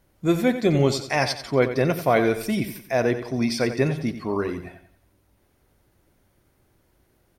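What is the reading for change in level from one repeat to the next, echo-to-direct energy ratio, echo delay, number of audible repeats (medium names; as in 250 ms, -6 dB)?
-8.5 dB, -10.5 dB, 90 ms, 3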